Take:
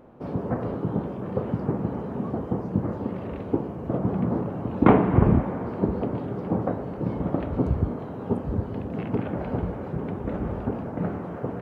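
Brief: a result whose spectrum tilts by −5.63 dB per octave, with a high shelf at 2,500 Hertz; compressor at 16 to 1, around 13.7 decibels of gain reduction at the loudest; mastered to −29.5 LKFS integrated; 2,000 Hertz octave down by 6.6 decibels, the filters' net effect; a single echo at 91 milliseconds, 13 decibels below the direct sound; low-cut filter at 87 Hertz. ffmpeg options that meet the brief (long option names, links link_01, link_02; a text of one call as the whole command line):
ffmpeg -i in.wav -af "highpass=87,equalizer=frequency=2000:width_type=o:gain=-7.5,highshelf=frequency=2500:gain=-4,acompressor=threshold=-24dB:ratio=16,aecho=1:1:91:0.224,volume=2dB" out.wav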